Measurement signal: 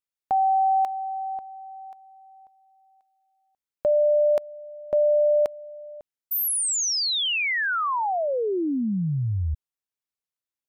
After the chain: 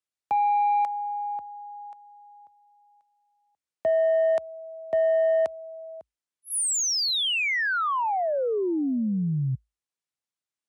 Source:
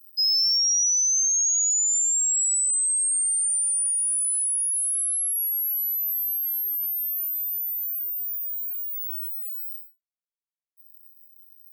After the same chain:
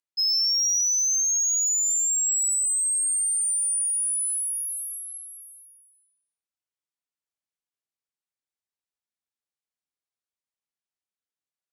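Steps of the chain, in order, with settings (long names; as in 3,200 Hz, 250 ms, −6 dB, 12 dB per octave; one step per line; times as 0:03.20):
downsampling to 22,050 Hz
soft clipping −17 dBFS
frequency shifter +54 Hz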